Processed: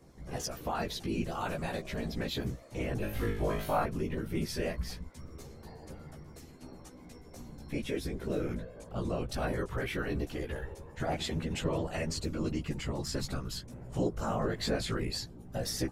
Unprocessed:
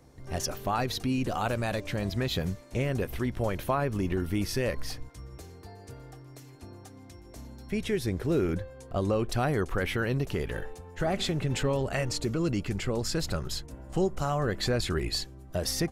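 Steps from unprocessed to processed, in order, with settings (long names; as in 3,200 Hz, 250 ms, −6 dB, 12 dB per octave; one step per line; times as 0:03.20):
in parallel at −3 dB: downward compressor, threshold −40 dBFS, peak gain reduction 17 dB
on the sum: random phases in short frames
0:02.98–0:03.84: flutter between parallel walls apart 3.3 metres, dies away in 0.5 s
tape wow and flutter 23 cents
multi-voice chorus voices 2, 0.17 Hz, delay 15 ms, depth 2.9 ms
level −3.5 dB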